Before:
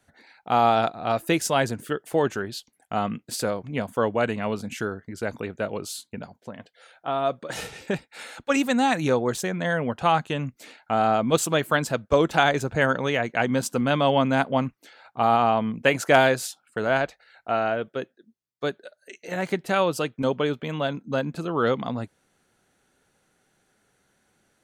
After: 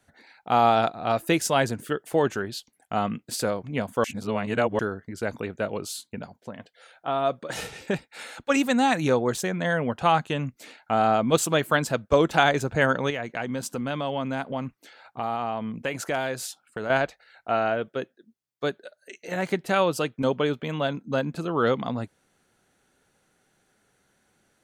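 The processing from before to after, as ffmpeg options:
-filter_complex "[0:a]asettb=1/sr,asplit=3[a][b][c];[a]atrim=end=13.104[d];[b]atrim=start=13.1:end=16.9,asetpts=PTS-STARTPTS,afade=t=in:d=0.004:c=qsin,afade=t=out:st=3.796:d=0.004:c=qsin,acompressor=threshold=-31dB:ratio=2:attack=3.2:release=140:knee=1:detection=peak[e];[c]atrim=start=16.896[f];[d][e]acrossfade=d=0.004:c1=hsin:c2=qsin[g];[g][f]acrossfade=d=0.004:c1=qsin:c2=hsin,asplit=3[h][i][j];[h]atrim=end=4.042[k];[i]atrim=start=4.038:end=4.792,asetpts=PTS-STARTPTS,areverse[l];[j]atrim=start=4.788[m];[k][l]acrossfade=d=0.004:c1=hsin:c2=hsin[n];[n][m]acrossfade=d=0.004:c1=hsin:c2=hsin"

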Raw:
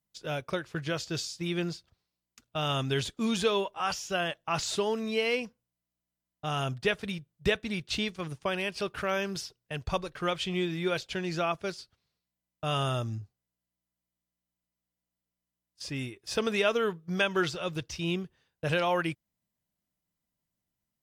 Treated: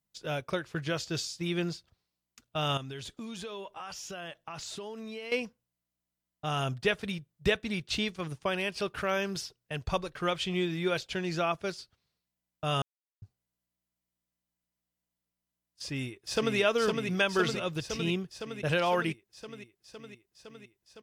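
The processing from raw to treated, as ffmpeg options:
-filter_complex "[0:a]asettb=1/sr,asplit=3[a][b][c];[a]atrim=end=2.774[d];[b]atrim=start=2.77:end=5.32,asetpts=PTS-STARTPTS,afade=t=in:d=0.004:c=qsin,afade=t=out:st=2.546:d=0.004:c=qsin,acompressor=threshold=-38dB:ratio=6:attack=3.2:release=140:knee=1:detection=peak[e];[c]atrim=start=5.316[f];[d][e]acrossfade=d=0.004:c1=hsin:c2=qsin[g];[g][f]acrossfade=d=0.004:c1=qsin:c2=hsin,asplit=2[h][i];[i]afade=t=in:st=15.85:d=0.01,afade=t=out:st=16.57:d=0.01,aecho=0:1:510|1020|1530|2040|2550|3060|3570|4080|4590|5100|5610|6120:0.668344|0.501258|0.375943|0.281958|0.211468|0.158601|0.118951|0.0892131|0.0669099|0.0501824|0.0376368|0.0282276[j];[h][j]amix=inputs=2:normalize=0,asplit=3[k][l][m];[k]atrim=end=12.82,asetpts=PTS-STARTPTS,afade=t=out:st=12.816:d=0.004:c=hsin[n];[l]atrim=start=12.82:end=13.22,asetpts=PTS-STARTPTS,volume=0[o];[m]atrim=start=13.22,asetpts=PTS-STARTPTS,afade=t=in:d=0.004:c=hsin[p];[n][o][p]concat=n=3:v=0:a=1"

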